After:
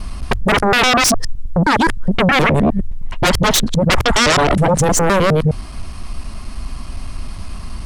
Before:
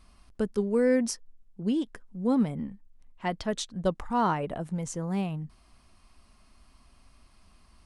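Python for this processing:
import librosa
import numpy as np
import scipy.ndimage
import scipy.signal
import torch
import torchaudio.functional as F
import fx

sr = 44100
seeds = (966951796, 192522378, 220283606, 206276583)

y = fx.local_reverse(x, sr, ms=104.0)
y = fx.low_shelf(y, sr, hz=190.0, db=9.0)
y = fx.hum_notches(y, sr, base_hz=50, count=2)
y = fx.fold_sine(y, sr, drive_db=18, ceiling_db=-12.5)
y = F.gain(torch.from_numpy(y), 3.0).numpy()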